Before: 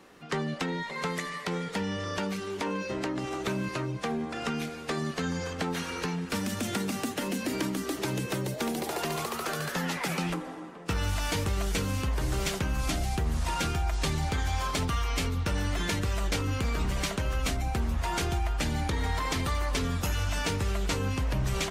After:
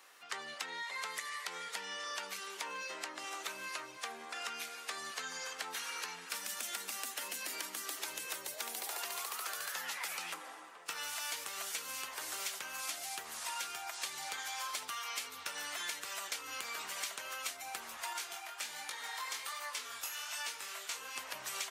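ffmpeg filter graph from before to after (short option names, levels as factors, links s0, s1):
-filter_complex "[0:a]asettb=1/sr,asplit=3[s0][s1][s2];[s0]atrim=end=18.134[s3];[s1]atrim=start=18.13:end=21.16,asetpts=PTS-STARTPTS,afade=t=in:d=0.004:c=qsin,afade=t=out:st=3.026:d=0.004:c=qsin,lowshelf=f=460:g=-5.5,flanger=delay=17:depth=6.4:speed=1.3,asplit=2[s4][s5];[s5]adelay=25,volume=0.282[s6];[s4][s6]amix=inputs=2:normalize=0,atrim=end_sample=133623[s7];[s2]atrim=start=21.156[s8];[s3][s7]acrossfade=d=0.004:c1=hsin:c2=qsin[s9];[s9][s8]acrossfade=d=0.004:c1=qsin:c2=hsin,highpass=960,highshelf=f=7100:g=9.5,acompressor=threshold=0.0178:ratio=4,volume=0.75"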